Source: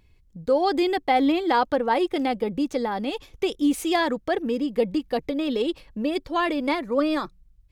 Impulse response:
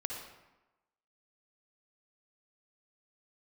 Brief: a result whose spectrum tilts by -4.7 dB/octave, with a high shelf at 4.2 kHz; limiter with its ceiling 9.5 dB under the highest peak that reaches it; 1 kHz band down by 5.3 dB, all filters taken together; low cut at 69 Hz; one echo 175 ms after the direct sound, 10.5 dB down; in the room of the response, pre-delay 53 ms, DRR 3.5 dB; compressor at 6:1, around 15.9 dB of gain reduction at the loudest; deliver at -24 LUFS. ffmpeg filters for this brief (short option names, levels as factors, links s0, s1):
-filter_complex "[0:a]highpass=69,equalizer=f=1000:t=o:g=-7.5,highshelf=f=4200:g=3.5,acompressor=threshold=0.0158:ratio=6,alimiter=level_in=2.82:limit=0.0631:level=0:latency=1,volume=0.355,aecho=1:1:175:0.299,asplit=2[s0][s1];[1:a]atrim=start_sample=2205,adelay=53[s2];[s1][s2]afir=irnorm=-1:irlink=0,volume=0.596[s3];[s0][s3]amix=inputs=2:normalize=0,volume=5.96"